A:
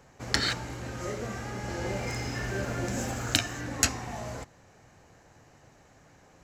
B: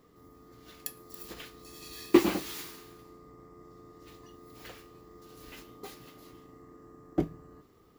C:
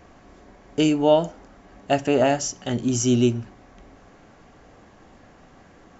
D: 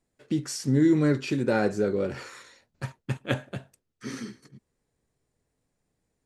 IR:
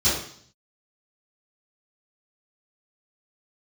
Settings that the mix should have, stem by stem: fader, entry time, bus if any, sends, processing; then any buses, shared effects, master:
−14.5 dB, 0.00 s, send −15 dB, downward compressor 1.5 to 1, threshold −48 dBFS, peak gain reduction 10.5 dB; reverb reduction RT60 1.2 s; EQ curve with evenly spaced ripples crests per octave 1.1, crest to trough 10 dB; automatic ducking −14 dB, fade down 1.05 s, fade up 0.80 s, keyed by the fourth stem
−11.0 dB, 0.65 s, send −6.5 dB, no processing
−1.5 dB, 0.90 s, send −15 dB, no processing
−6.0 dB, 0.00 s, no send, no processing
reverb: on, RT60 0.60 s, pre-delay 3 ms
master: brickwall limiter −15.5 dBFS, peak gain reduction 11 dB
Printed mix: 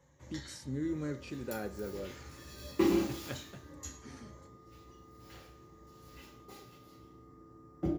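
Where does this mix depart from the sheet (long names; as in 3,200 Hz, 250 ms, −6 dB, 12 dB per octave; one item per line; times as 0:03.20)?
stem B: send −6.5 dB → −12.5 dB
stem C: muted
stem D −6.0 dB → −15.0 dB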